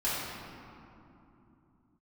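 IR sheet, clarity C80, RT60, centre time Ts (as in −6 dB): −0.5 dB, 2.9 s, 146 ms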